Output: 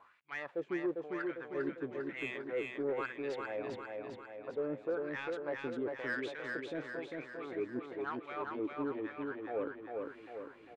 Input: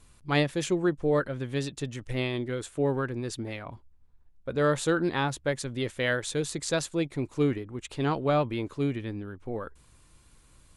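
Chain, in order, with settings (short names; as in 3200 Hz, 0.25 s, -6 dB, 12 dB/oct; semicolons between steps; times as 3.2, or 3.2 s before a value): high shelf 5700 Hz -7.5 dB; reverse; compressor 6:1, threshold -39 dBFS, peak gain reduction 18 dB; reverse; wah 1 Hz 280–2400 Hz, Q 2.8; overdrive pedal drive 12 dB, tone 1700 Hz, clips at -34.5 dBFS; on a send: feedback echo 0.4 s, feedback 56%, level -3.5 dB; on the sum: gain +9 dB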